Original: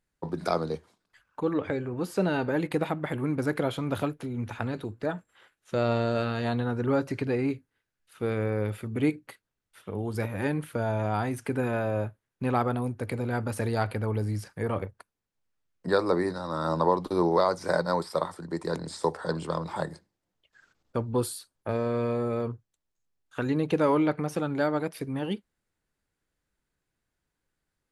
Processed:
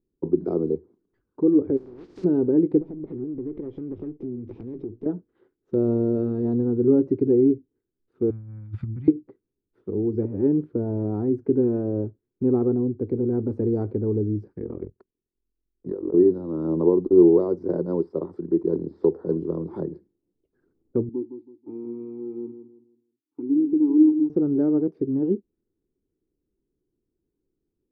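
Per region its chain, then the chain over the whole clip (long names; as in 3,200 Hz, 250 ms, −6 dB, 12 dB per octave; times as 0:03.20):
0:01.76–0:02.23: compressing power law on the bin magnitudes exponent 0.1 + downward compressor 8 to 1, threshold −35 dBFS
0:02.80–0:05.06: lower of the sound and its delayed copy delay 0.34 ms + downward compressor 5 to 1, threshold −37 dBFS
0:08.30–0:09.08: Chebyshev band-stop filter 140–1,000 Hz + low-shelf EQ 260 Hz +7 dB + compressor whose output falls as the input rises −33 dBFS, ratio −0.5
0:14.59–0:16.14: amplitude modulation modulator 43 Hz, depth 90% + downward compressor, threshold −32 dBFS
0:21.09–0:24.30: formant filter u + repeating echo 162 ms, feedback 32%, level −10 dB
whole clip: low-pass that shuts in the quiet parts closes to 1,000 Hz, open at −25.5 dBFS; drawn EQ curve 160 Hz 0 dB, 380 Hz +13 dB, 600 Hz −10 dB, 1,700 Hz −16 dB, 2,900 Hz −16 dB, 4,800 Hz −4 dB; treble cut that deepens with the level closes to 960 Hz, closed at −27.5 dBFS; level +1.5 dB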